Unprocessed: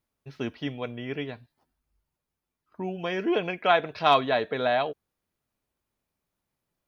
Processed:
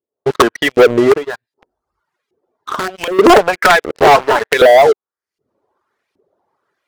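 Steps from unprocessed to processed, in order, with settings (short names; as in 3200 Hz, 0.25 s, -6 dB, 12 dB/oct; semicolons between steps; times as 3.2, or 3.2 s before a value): 3.82–4.53 cycle switcher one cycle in 2, muted; recorder AGC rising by 44 dB/s; dynamic EQ 790 Hz, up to +3 dB, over -37 dBFS, Q 5.4; reverb removal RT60 1.1 s; fifteen-band EQ 100 Hz +6 dB, 400 Hz +11 dB, 2500 Hz -8 dB; wrapped overs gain 8.5 dB; LFO band-pass saw up 1.3 Hz 390–2700 Hz; sample leveller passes 5; 1.16–3.19 compressor 6:1, threshold -27 dBFS, peak gain reduction 13.5 dB; gain +7.5 dB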